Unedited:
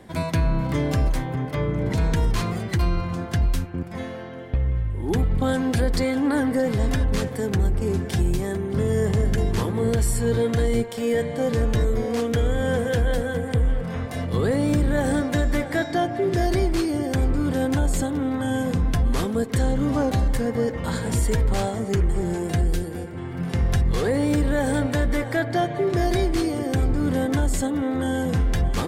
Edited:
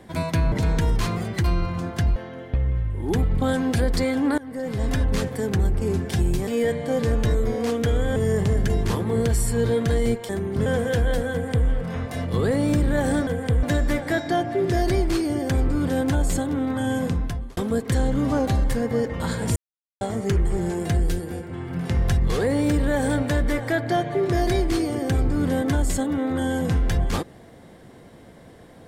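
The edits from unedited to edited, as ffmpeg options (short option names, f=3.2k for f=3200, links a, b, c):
-filter_complex "[0:a]asplit=13[a][b][c][d][e][f][g][h][i][j][k][l][m];[a]atrim=end=0.522[n];[b]atrim=start=1.868:end=3.512[o];[c]atrim=start=4.158:end=6.38,asetpts=PTS-STARTPTS,afade=t=out:st=2.218:d=0.004:c=hsin:silence=0.0668344[p];[d]atrim=start=6.38:end=8.472,asetpts=PTS-STARTPTS,afade=t=in:d=0.61:silence=0.0668344[q];[e]atrim=start=10.968:end=12.662[r];[f]atrim=start=8.838:end=10.972[s];[g]atrim=start=8.468:end=8.842[t];[h]atrim=start=12.658:end=15.272[u];[i]atrim=start=13.318:end=13.682[v];[j]atrim=start=15.268:end=19.21,asetpts=PTS-STARTPTS,afade=t=out:st=3.412:d=0.53[w];[k]atrim=start=19.21:end=21.2,asetpts=PTS-STARTPTS,afade=t=in:d=0.004:c=hsin,afade=t=out:st=1.986:d=0.004:c=hsin[x];[l]atrim=start=21.2:end=21.65,asetpts=PTS-STARTPTS,volume=0[y];[m]atrim=start=21.65,asetpts=PTS-STARTPTS,afade=t=in:d=0.004:c=hsin[z];[n][o]acrossfade=d=0.004:c1=hsin:c2=hsin[aa];[p][q]concat=n=2:v=0:a=1[ab];[aa][ab]acrossfade=d=0.004:c1=hsin:c2=hsin[ac];[ac][r]acrossfade=d=0.004:c1=hsin:c2=hsin[ad];[ad][s]acrossfade=d=0.004:c1=hsin:c2=hsin[ae];[ae][t]acrossfade=d=0.004:c1=hsin:c2=hsin[af];[af][u]acrossfade=d=0.004:c1=hsin:c2=hsin[ag];[ag][v]acrossfade=d=0.004:c1=hsin:c2=hsin[ah];[w][x][y][z]concat=n=4:v=0:a=1[ai];[ah][ai]acrossfade=d=0.004:c1=hsin:c2=hsin"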